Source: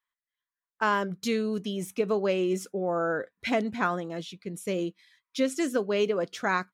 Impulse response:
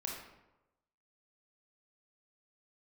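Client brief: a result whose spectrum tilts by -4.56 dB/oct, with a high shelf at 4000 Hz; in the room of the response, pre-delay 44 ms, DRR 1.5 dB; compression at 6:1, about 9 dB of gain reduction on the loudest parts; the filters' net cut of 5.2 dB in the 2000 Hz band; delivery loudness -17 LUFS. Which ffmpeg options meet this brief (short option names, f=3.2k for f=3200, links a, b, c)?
-filter_complex "[0:a]equalizer=f=2k:t=o:g=-8.5,highshelf=f=4k:g=4.5,acompressor=threshold=-31dB:ratio=6,asplit=2[a][b];[1:a]atrim=start_sample=2205,adelay=44[c];[b][c]afir=irnorm=-1:irlink=0,volume=-2dB[d];[a][d]amix=inputs=2:normalize=0,volume=16.5dB"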